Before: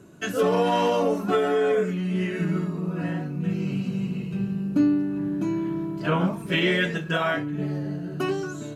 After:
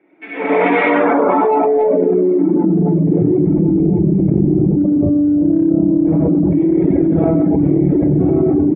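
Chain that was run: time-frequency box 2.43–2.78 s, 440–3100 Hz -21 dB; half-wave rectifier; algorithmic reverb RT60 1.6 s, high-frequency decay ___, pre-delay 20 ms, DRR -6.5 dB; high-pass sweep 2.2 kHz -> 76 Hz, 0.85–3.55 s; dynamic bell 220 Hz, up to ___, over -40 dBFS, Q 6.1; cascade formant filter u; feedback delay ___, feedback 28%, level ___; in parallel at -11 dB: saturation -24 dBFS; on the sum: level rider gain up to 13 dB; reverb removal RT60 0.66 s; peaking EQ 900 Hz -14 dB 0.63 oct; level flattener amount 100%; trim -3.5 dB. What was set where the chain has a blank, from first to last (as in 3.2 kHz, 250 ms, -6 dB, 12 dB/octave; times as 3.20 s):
0.6×, -5 dB, 1070 ms, -8.5 dB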